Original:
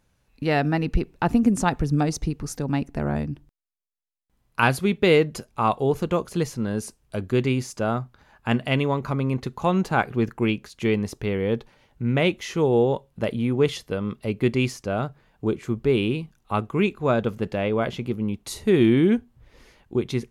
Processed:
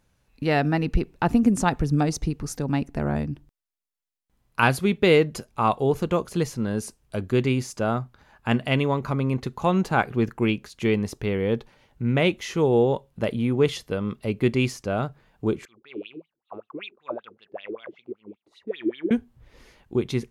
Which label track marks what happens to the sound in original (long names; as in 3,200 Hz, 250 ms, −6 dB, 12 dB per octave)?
15.650000	19.110000	LFO wah 5.2 Hz 310–3,700 Hz, Q 8.2